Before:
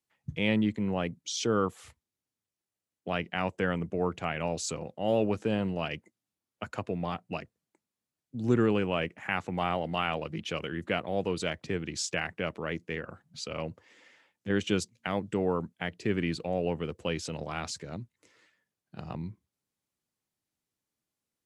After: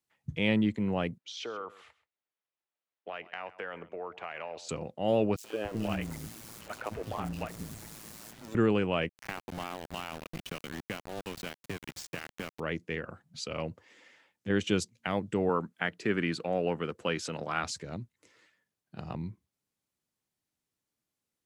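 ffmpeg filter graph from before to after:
-filter_complex "[0:a]asettb=1/sr,asplit=3[a][b][c];[a]atrim=end=1.184[d];[b]atrim=start=1.18:end=4.69,asetpts=PTS-STARTPTS,afade=t=in:d=0.004:c=qsin,afade=t=out:st=3.506:d=0.004:c=qsin,acrossover=split=420 3700:gain=0.0891 1 0.0891[e][f][g];[e][f][g]amix=inputs=3:normalize=0,acompressor=threshold=-34dB:ratio=6:attack=3.2:release=140:knee=1:detection=peak,aecho=1:1:131:0.133,atrim=end_sample=154791[h];[c]atrim=start=4.686[i];[d][h]acrossfade=d=0.004:c1=hsin:c2=qsin[j];[j][i]acrossfade=d=0.004:c1=qsin:c2=hsin,asettb=1/sr,asplit=3[k][l][m];[k]atrim=end=5.364[n];[l]atrim=start=5.36:end=8.55,asetpts=PTS-STARTPTS,afade=t=in:d=0.004:c=qsin,afade=t=out:st=3.186:d=0.004:c=qsin,aeval=exprs='val(0)+0.5*0.015*sgn(val(0))':c=same,acrossover=split=310|3200[o][p][q];[p]adelay=80[r];[o]adelay=290[s];[s][r][q]amix=inputs=3:normalize=0,atrim=end_sample=140679,tremolo=f=110:d=0.71[t];[m]atrim=start=8.546[u];[n][t]acrossfade=d=0.004:c1=hsin:c2=qsin[v];[v][u]acrossfade=d=0.004:c1=qsin:c2=hsin,asettb=1/sr,asplit=3[w][x][y];[w]atrim=end=9.094[z];[x]atrim=start=9.09:end=12.6,asetpts=PTS-STARTPTS,afade=t=in:d=0.004:c=qsin,afade=t=out:st=3.506:d=0.004:c=qsin,acrossover=split=100|1100[aa][ab][ac];[aa]acompressor=threshold=-57dB:ratio=4[ad];[ab]acompressor=threshold=-40dB:ratio=4[ae];[ac]acompressor=threshold=-40dB:ratio=4[af];[ad][ae][af]amix=inputs=3:normalize=0,aeval=exprs='val(0)*gte(abs(val(0)),0.0133)':c=same,bass=f=250:g=7,treble=f=4k:g=-1[ag];[y]atrim=start=12.596[ah];[z][ag]acrossfade=d=0.004:c1=hsin:c2=qsin[ai];[ai][ah]acrossfade=d=0.004:c1=qsin:c2=hsin,asettb=1/sr,asplit=3[aj][ak][al];[aj]atrim=end=15.494[am];[ak]atrim=start=15.49:end=17.64,asetpts=PTS-STARTPTS,afade=t=in:d=0.004:c=qsin,afade=t=out:st=2.146:d=0.004:c=qsin,highpass=150,equalizer=f=1.4k:t=o:w=0.87:g=7.5,acompressor=mode=upward:threshold=-50dB:ratio=2.5:attack=3.2:release=140:knee=2.83:detection=peak[an];[al]atrim=start=17.636[ao];[am][an]acrossfade=d=0.004:c1=hsin:c2=qsin[ap];[ap][ao]acrossfade=d=0.004:c1=qsin:c2=hsin"

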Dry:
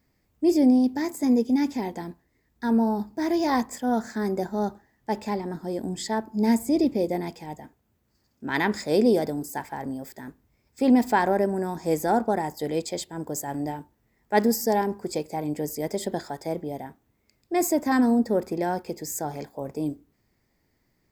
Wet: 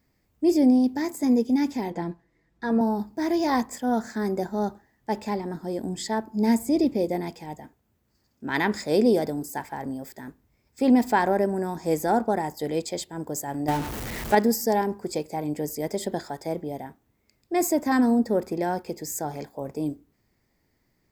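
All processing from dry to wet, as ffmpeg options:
-filter_complex "[0:a]asettb=1/sr,asplit=3[a][b][c];[a]atrim=end=1.904[d];[b]atrim=start=1.9:end=2.81,asetpts=PTS-STARTPTS,afade=t=in:d=0.004:c=qsin,afade=t=out:st=0.906:d=0.004:c=qsin,aemphasis=mode=reproduction:type=50fm,aecho=1:1:6:0.81,atrim=end_sample=40131[e];[c]atrim=start=2.806[f];[d][e]acrossfade=d=0.004:c1=hsin:c2=qsin[g];[g][f]acrossfade=d=0.004:c1=qsin:c2=hsin,asettb=1/sr,asplit=3[h][i][j];[h]atrim=end=13.684[k];[i]atrim=start=13.68:end=14.35,asetpts=PTS-STARTPTS,afade=t=in:d=0.004:c=qsin,afade=t=out:st=0.666:d=0.004:c=qsin,aeval=exprs='val(0)+0.5*0.0211*sgn(val(0))':c=same,acontrast=55[l];[j]atrim=start=14.346[m];[k][l]acrossfade=d=0.004:c1=hsin:c2=qsin[n];[n][m]acrossfade=d=0.004:c1=qsin:c2=hsin"

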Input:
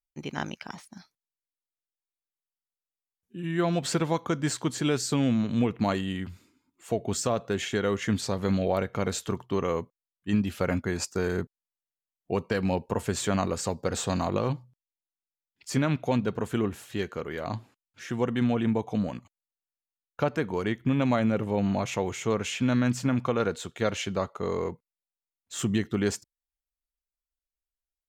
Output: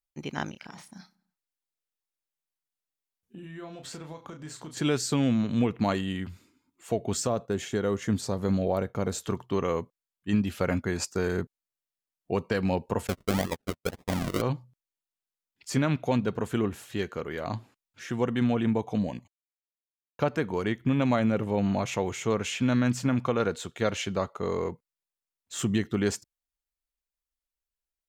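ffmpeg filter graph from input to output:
-filter_complex "[0:a]asettb=1/sr,asplit=3[a][b][c];[a]atrim=end=0.514[d];[b]atrim=start=0.51:end=4.77,asetpts=PTS-STARTPTS,afade=t=in:d=0.004:c=qsin,afade=t=out:st=4.256:d=0.004:c=qsin,acompressor=threshold=-40dB:ratio=5:attack=3.2:release=140:knee=1:detection=peak,asplit=2[e][f];[f]adelay=32,volume=-6dB[g];[e][g]amix=inputs=2:normalize=0,atrim=end_sample=187866,asplit=2[h][i];[i]adelay=98,lowpass=f=3.8k:p=1,volume=-22.5dB,asplit=2[j][k];[k]adelay=98,lowpass=f=3.8k:p=1,volume=0.49,asplit=2[l][m];[m]adelay=98,lowpass=f=3.8k:p=1,volume=0.49[n];[h][j][l][n]amix=inputs=4:normalize=0,atrim=end_sample=187866[o];[c]atrim=start=4.766[p];[d][o]acrossfade=d=0.004:c1=hsin:c2=qsin[q];[q][p]acrossfade=d=0.004:c1=qsin:c2=hsin,asettb=1/sr,asplit=3[r][s][t];[r]atrim=end=7.264[u];[s]atrim=start=7.26:end=9.24,asetpts=PTS-STARTPTS,afade=t=in:d=0.004:c=qsin,afade=t=out:st=1.976:d=0.004:c=qsin,agate=range=-33dB:threshold=-43dB:ratio=3:release=100:detection=peak,equalizer=f=2.5k:w=0.67:g=-7.5[v];[t]atrim=start=9.236[w];[u][v]acrossfade=d=0.004:c1=hsin:c2=qsin[x];[x][w]acrossfade=d=0.004:c1=qsin:c2=hsin,asettb=1/sr,asplit=3[y][z][aa];[y]atrim=end=13.074[ab];[z]atrim=start=13.07:end=14.42,asetpts=PTS-STARTPTS,afade=t=in:d=0.004:c=qsin,afade=t=out:st=1.346:d=0.004:c=qsin,agate=range=-46dB:threshold=-29dB:ratio=16:release=100:detection=peak,equalizer=f=2.7k:t=o:w=1.2:g=-14.5,acrusher=samples=42:mix=1:aa=0.000001:lfo=1:lforange=25.2:lforate=1.8[ac];[aa]atrim=start=14.416[ad];[ab][ac]acrossfade=d=0.004:c1=hsin:c2=qsin[ae];[ae][ad]acrossfade=d=0.004:c1=qsin:c2=hsin,asettb=1/sr,asplit=3[af][ag][ah];[af]atrim=end=18.984[ai];[ag]atrim=start=18.98:end=20.2,asetpts=PTS-STARTPTS,afade=t=in:d=0.004:c=qsin,afade=t=out:st=1.216:d=0.004:c=qsin,asuperstop=centerf=1300:order=4:qfactor=2.2,agate=range=-33dB:threshold=-52dB:ratio=3:release=100:detection=peak[aj];[ah]atrim=start=20.196[ak];[ai][aj]acrossfade=d=0.004:c1=hsin:c2=qsin[al];[al][ak]acrossfade=d=0.004:c1=qsin:c2=hsin"

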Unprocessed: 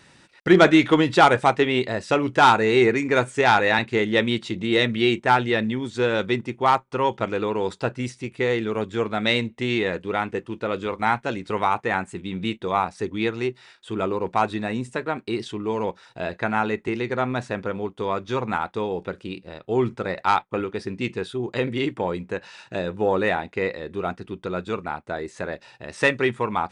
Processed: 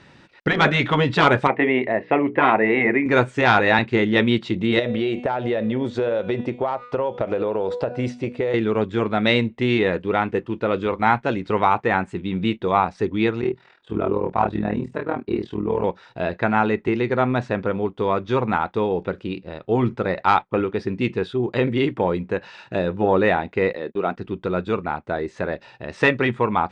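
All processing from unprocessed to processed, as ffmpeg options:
-filter_complex "[0:a]asettb=1/sr,asplit=3[a][b][c];[a]atrim=end=1.474[d];[b]atrim=start=1.47:end=3.06,asetpts=PTS-STARTPTS,afade=t=in:d=0.004:c=qsin,afade=t=out:st=1.586:d=0.004:c=qsin,highpass=210,equalizer=f=470:t=q:w=4:g=-3,equalizer=f=680:t=q:w=4:g=5,equalizer=f=1.4k:t=q:w=4:g=-9,equalizer=f=2k:t=q:w=4:g=7,lowpass=f=2.4k:w=0.5412,lowpass=f=2.4k:w=1.3066,bandreject=f=60:t=h:w=6,bandreject=f=120:t=h:w=6,bandreject=f=180:t=h:w=6,bandreject=f=240:t=h:w=6,bandreject=f=300:t=h:w=6,bandreject=f=360:t=h:w=6,bandreject=f=420:t=h:w=6,bandreject=f=480:t=h:w=6[e];[c]atrim=start=3.056[f];[d][e]acrossfade=d=0.004:c1=hsin:c2=qsin[g];[g][f]acrossfade=d=0.004:c1=qsin:c2=hsin,asettb=1/sr,asplit=3[h][i][j];[h]atrim=end=4.794[k];[i]atrim=start=4.79:end=8.54,asetpts=PTS-STARTPTS,afade=t=in:d=0.004:c=qsin,afade=t=out:st=3.746:d=0.004:c=qsin,equalizer=f=590:w=2:g=13.5,bandreject=f=244.7:t=h:w=4,bandreject=f=489.4:t=h:w=4,bandreject=f=734.1:t=h:w=4,bandreject=f=978.8:t=h:w=4,bandreject=f=1.2235k:t=h:w=4,bandreject=f=1.4682k:t=h:w=4,bandreject=f=1.7129k:t=h:w=4,bandreject=f=1.9576k:t=h:w=4,bandreject=f=2.2023k:t=h:w=4,bandreject=f=2.447k:t=h:w=4,bandreject=f=2.6917k:t=h:w=4,bandreject=f=2.9364k:t=h:w=4,bandreject=f=3.1811k:t=h:w=4,bandreject=f=3.4258k:t=h:w=4,bandreject=f=3.6705k:t=h:w=4,bandreject=f=3.9152k:t=h:w=4,bandreject=f=4.1599k:t=h:w=4,bandreject=f=4.4046k:t=h:w=4,bandreject=f=4.6493k:t=h:w=4,bandreject=f=4.894k:t=h:w=4,bandreject=f=5.1387k:t=h:w=4,bandreject=f=5.3834k:t=h:w=4,bandreject=f=5.6281k:t=h:w=4,bandreject=f=5.8728k:t=h:w=4,bandreject=f=6.1175k:t=h:w=4,bandreject=f=6.3622k:t=h:w=4,bandreject=f=6.6069k:t=h:w=4,bandreject=f=6.8516k:t=h:w=4,bandreject=f=7.0963k:t=h:w=4,bandreject=f=7.341k:t=h:w=4,bandreject=f=7.5857k:t=h:w=4,bandreject=f=7.8304k:t=h:w=4,bandreject=f=8.0751k:t=h:w=4,bandreject=f=8.3198k:t=h:w=4,bandreject=f=8.5645k:t=h:w=4,bandreject=f=8.8092k:t=h:w=4,acompressor=threshold=-23dB:ratio=12:attack=3.2:release=140:knee=1:detection=peak[l];[j]atrim=start=8.536[m];[k][l]acrossfade=d=0.004:c1=hsin:c2=qsin[n];[n][m]acrossfade=d=0.004:c1=qsin:c2=hsin,asettb=1/sr,asplit=3[o][p][q];[o]atrim=end=13.414[r];[p]atrim=start=13.41:end=15.84,asetpts=PTS-STARTPTS,afade=t=in:d=0.004:c=qsin,afade=t=out:st=2.426:d=0.004:c=qsin,highshelf=f=2.3k:g=-10.5,tremolo=f=41:d=0.824,asplit=2[s][t];[t]adelay=29,volume=-3dB[u];[s][u]amix=inputs=2:normalize=0,atrim=end_sample=107163[v];[q]atrim=start=15.836[w];[r][v]acrossfade=d=0.004:c1=hsin:c2=qsin[x];[x][w]acrossfade=d=0.004:c1=qsin:c2=hsin,asettb=1/sr,asplit=3[y][z][aa];[y]atrim=end=23.734[ab];[z]atrim=start=23.73:end=24.17,asetpts=PTS-STARTPTS,afade=t=in:d=0.004:c=qsin,afade=t=out:st=0.436:d=0.004:c=qsin,highpass=200,lowpass=6.5k,agate=range=-42dB:threshold=-40dB:ratio=16:release=100:detection=peak[ac];[aa]atrim=start=24.166[ad];[ab][ac]acrossfade=d=0.004:c1=hsin:c2=qsin[ae];[ae][ad]acrossfade=d=0.004:c1=qsin:c2=hsin,lowpass=3.6k,equalizer=f=2.1k:w=0.47:g=-3,afftfilt=real='re*lt(hypot(re,im),0.891)':imag='im*lt(hypot(re,im),0.891)':win_size=1024:overlap=0.75,volume=5.5dB"

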